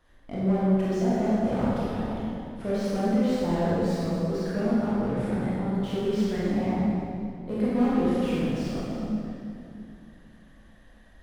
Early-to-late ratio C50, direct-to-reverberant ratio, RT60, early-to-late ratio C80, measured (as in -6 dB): -5.0 dB, -9.0 dB, 2.6 s, -2.5 dB